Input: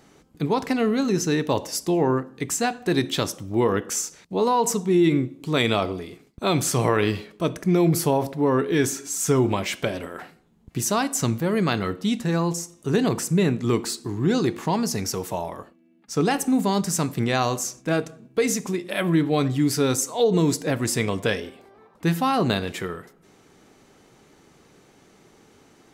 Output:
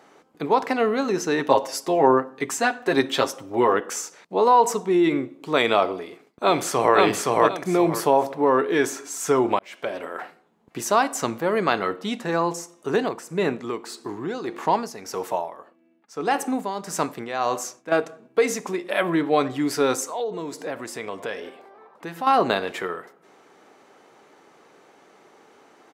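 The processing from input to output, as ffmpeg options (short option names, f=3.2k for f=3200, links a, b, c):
-filter_complex "[0:a]asettb=1/sr,asplit=3[a][b][c];[a]atrim=end=1.384[d];[b]atrim=start=1.38:end=3.74,asetpts=PTS-STARTPTS,afade=t=in:d=0.004:c=qsin,afade=t=out:st=2.356:d=0.004:c=qsin,aecho=1:1:7.5:0.64,atrim=end_sample=104076[e];[c]atrim=start=3.736[f];[d][e]acrossfade=d=0.004:c1=hsin:c2=qsin[g];[g][f]acrossfade=d=0.004:c1=qsin:c2=hsin,asplit=2[h][i];[i]afade=t=in:st=5.95:d=0.01,afade=t=out:st=6.96:d=0.01,aecho=0:1:520|1040|1560|2080:0.944061|0.236015|0.0590038|0.014751[j];[h][j]amix=inputs=2:normalize=0,asettb=1/sr,asplit=3[k][l][m];[k]atrim=end=12.914[n];[l]atrim=start=12.91:end=17.92,asetpts=PTS-STARTPTS,afade=t=in:d=0.004:c=qsin,afade=t=out:st=5.006:d=0.004:c=qsin,tremolo=f=1.7:d=0.67[o];[m]atrim=start=17.916[p];[n][o]acrossfade=d=0.004:c1=hsin:c2=qsin[q];[q][p]acrossfade=d=0.004:c1=qsin:c2=hsin,asettb=1/sr,asplit=3[r][s][t];[r]atrim=end=20.074[u];[s]atrim=start=20.07:end=22.27,asetpts=PTS-STARTPTS,afade=t=in:d=0.004:c=qsin,afade=t=out:st=2.196:d=0.004:c=qsin,acompressor=threshold=-32dB:ratio=2.5:attack=3.2:release=140:knee=1:detection=peak[v];[t]atrim=start=22.266[w];[u][v]acrossfade=d=0.004:c1=hsin:c2=qsin[x];[x][w]acrossfade=d=0.004:c1=qsin:c2=hsin,asplit=2[y][z];[y]atrim=end=9.59,asetpts=PTS-STARTPTS,afade=t=out:st=9.586:d=0.004:c=hsin[aa];[z]atrim=start=9.59,asetpts=PTS-STARTPTS,afade=t=in:d=0.54[ab];[aa][ab]concat=n=2:v=0:a=1,highpass=f=400:p=1,equalizer=f=790:w=0.31:g=13,volume=-6dB"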